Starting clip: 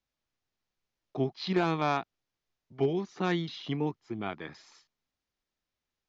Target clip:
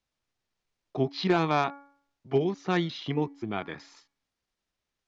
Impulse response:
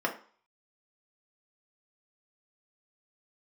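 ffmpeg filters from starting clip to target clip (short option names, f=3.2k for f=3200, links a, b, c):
-filter_complex "[0:a]aresample=22050,aresample=44100,atempo=1.2,bandreject=f=281.3:t=h:w=4,bandreject=f=562.6:t=h:w=4,bandreject=f=843.9:t=h:w=4,bandreject=f=1.1252k:t=h:w=4,bandreject=f=1.4065k:t=h:w=4,bandreject=f=1.6878k:t=h:w=4,bandreject=f=1.9691k:t=h:w=4,bandreject=f=2.2504k:t=h:w=4,asplit=2[a][b];[1:a]atrim=start_sample=2205,asetrate=61740,aresample=44100[c];[b][c]afir=irnorm=-1:irlink=0,volume=-28.5dB[d];[a][d]amix=inputs=2:normalize=0,volume=3dB"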